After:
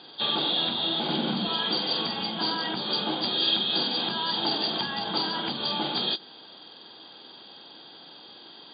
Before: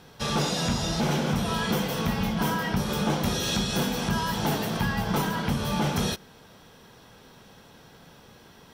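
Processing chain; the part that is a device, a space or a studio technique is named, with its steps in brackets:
hearing aid with frequency lowering (hearing-aid frequency compression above 3,200 Hz 4 to 1; downward compressor 2.5 to 1, threshold −28 dBFS, peak gain reduction 5 dB; loudspeaker in its box 290–6,300 Hz, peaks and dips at 320 Hz +9 dB, 470 Hz −3 dB, 800 Hz +4 dB, 2,100 Hz −4 dB, 3,200 Hz +9 dB, 4,700 Hz +10 dB)
0:01.08–0:01.48: parametric band 200 Hz +10.5 dB 0.77 octaves

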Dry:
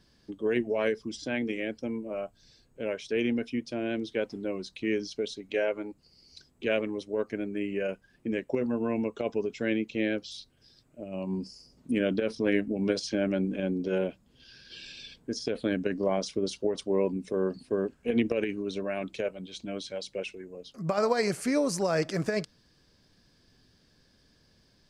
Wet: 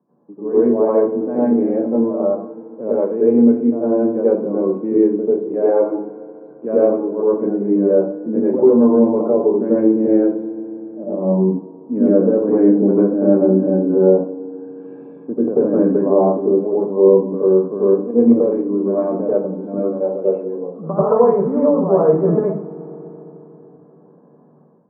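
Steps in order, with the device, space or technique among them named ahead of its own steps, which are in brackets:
0:18.21–0:19.53: high-frequency loss of the air 250 metres
Chebyshev band-pass filter 110–1,100 Hz, order 4
feedback delay network reverb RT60 3.4 s, high-frequency decay 0.75×, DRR 14.5 dB
dynamic equaliser 660 Hz, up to −3 dB, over −42 dBFS, Q 1.1
far laptop microphone (convolution reverb RT60 0.45 s, pre-delay 83 ms, DRR −8.5 dB; high-pass filter 170 Hz 24 dB per octave; automatic gain control gain up to 10 dB)

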